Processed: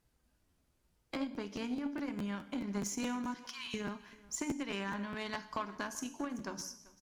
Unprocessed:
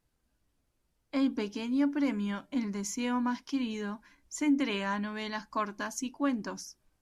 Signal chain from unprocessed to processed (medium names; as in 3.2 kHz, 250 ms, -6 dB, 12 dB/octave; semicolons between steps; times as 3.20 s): 3.34–3.74 s: Chebyshev high-pass 1 kHz, order 5; compression 8:1, threshold -40 dBFS, peak gain reduction 17.5 dB; gated-style reverb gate 290 ms falling, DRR 8 dB; Chebyshev shaper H 2 -27 dB, 3 -12 dB, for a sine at -26 dBFS; delay 389 ms -22 dB; crackling interface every 0.21 s, samples 512, repeat, from 0.50 s; trim +13.5 dB